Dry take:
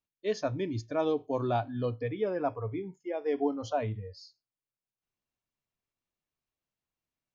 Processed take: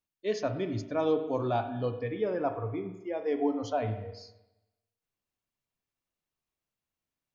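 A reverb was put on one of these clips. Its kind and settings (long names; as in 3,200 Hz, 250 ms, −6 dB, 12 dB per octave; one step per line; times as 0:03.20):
spring reverb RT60 1 s, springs 38/55 ms, chirp 70 ms, DRR 8 dB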